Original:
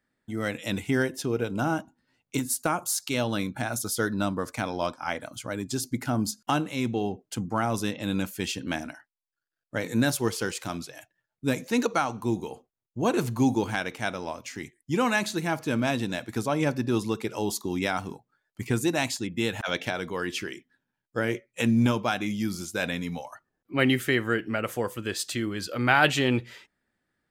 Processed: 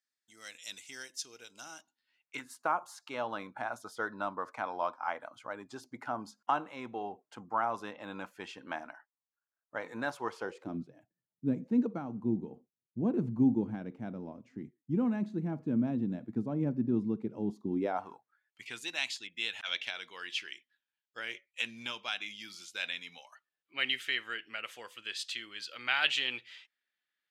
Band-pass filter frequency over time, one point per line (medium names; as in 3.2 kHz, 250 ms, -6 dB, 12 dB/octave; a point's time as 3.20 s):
band-pass filter, Q 1.8
1.75 s 5.8 kHz
2.64 s 1 kHz
10.37 s 1 kHz
10.80 s 210 Hz
17.68 s 210 Hz
18.09 s 1.1 kHz
18.65 s 3.1 kHz